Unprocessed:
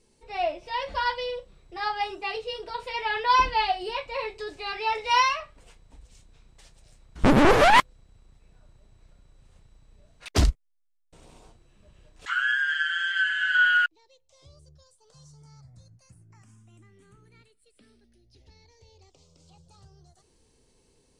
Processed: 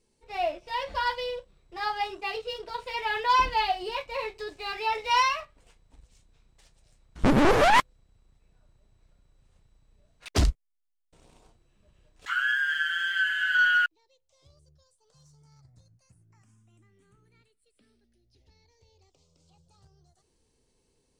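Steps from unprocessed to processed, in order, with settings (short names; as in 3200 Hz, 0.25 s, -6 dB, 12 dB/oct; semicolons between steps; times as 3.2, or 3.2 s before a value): sample leveller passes 1; gain -5 dB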